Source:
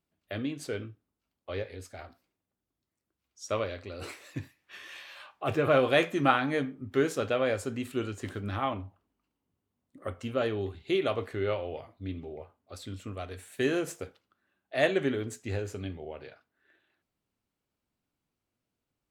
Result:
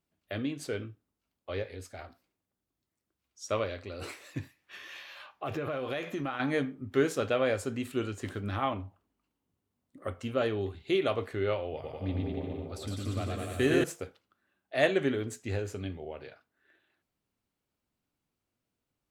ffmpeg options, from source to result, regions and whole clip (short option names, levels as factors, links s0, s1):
-filter_complex "[0:a]asettb=1/sr,asplit=3[s0][s1][s2];[s0]atrim=end=4.764[s3];[s1]atrim=start=4.76:end=6.4,asetpts=PTS-STARTPTS,afade=t=in:d=0.004:c=qsin,afade=t=out:st=1.636:d=0.004:c=qsin,equalizer=f=8500:t=o:w=0.22:g=-11.5,acompressor=threshold=0.0316:ratio=8:attack=3.2:release=140:knee=1:detection=peak[s4];[s2]atrim=start=6.396[s5];[s3][s4]acrossfade=d=0.004:c1=hsin:c2=qsin[s6];[s6][s5]acrossfade=d=0.004:c1=qsin:c2=hsin,asettb=1/sr,asplit=3[s7][s8][s9];[s7]atrim=end=11.734[s10];[s8]atrim=start=11.73:end=13.84,asetpts=PTS-STARTPTS,afade=t=in:d=0.004:c=qsin,afade=t=out:st=2.106:d=0.004:c=qsin,bass=f=250:g=4,treble=f=4000:g=0,aecho=1:1:110|203.5|283|350.5|407.9|456.8|498.2|533.5:0.794|0.631|0.501|0.398|0.316|0.251|0.2|0.158,atrim=end_sample=93051[s11];[s9]atrim=start=13.836[s12];[s10][s11]acrossfade=d=0.004:c1=hsin:c2=qsin[s13];[s13][s12]acrossfade=d=0.004:c1=qsin:c2=hsin"